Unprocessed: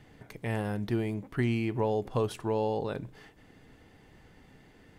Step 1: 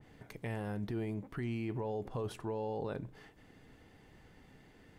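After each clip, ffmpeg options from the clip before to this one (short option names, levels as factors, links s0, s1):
-af "alimiter=level_in=1.41:limit=0.0631:level=0:latency=1:release=13,volume=0.708,adynamicequalizer=threshold=0.00178:dfrequency=2000:dqfactor=0.7:tfrequency=2000:tqfactor=0.7:attack=5:release=100:ratio=0.375:range=2.5:mode=cutabove:tftype=highshelf,volume=0.708"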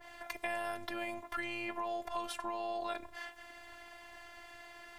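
-filter_complex "[0:a]afftfilt=real='hypot(re,im)*cos(PI*b)':imag='0':win_size=512:overlap=0.75,lowshelf=f=500:t=q:w=1.5:g=-12,acrossover=split=570|1800[s0][s1][s2];[s0]acompressor=threshold=0.00126:ratio=4[s3];[s1]acompressor=threshold=0.00178:ratio=4[s4];[s2]acompressor=threshold=0.00158:ratio=4[s5];[s3][s4][s5]amix=inputs=3:normalize=0,volume=5.62"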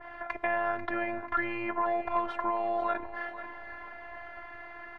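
-af "lowpass=f=1500:t=q:w=1.5,aecho=1:1:491|982|1473|1964|2455:0.251|0.116|0.0532|0.0244|0.0112,volume=2.24"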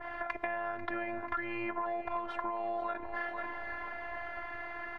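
-af "acompressor=threshold=0.0158:ratio=6,volume=1.5"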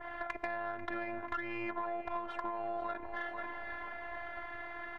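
-af "aeval=exprs='0.119*(cos(1*acos(clip(val(0)/0.119,-1,1)))-cos(1*PI/2))+0.00531*(cos(6*acos(clip(val(0)/0.119,-1,1)))-cos(6*PI/2))':c=same,volume=0.708"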